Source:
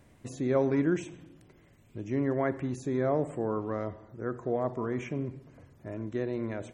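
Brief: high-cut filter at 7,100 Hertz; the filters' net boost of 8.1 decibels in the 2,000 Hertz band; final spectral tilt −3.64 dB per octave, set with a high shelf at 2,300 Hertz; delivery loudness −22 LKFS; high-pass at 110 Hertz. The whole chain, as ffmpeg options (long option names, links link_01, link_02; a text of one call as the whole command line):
ffmpeg -i in.wav -af "highpass=110,lowpass=7100,equalizer=frequency=2000:width_type=o:gain=6.5,highshelf=frequency=2300:gain=7.5,volume=9dB" out.wav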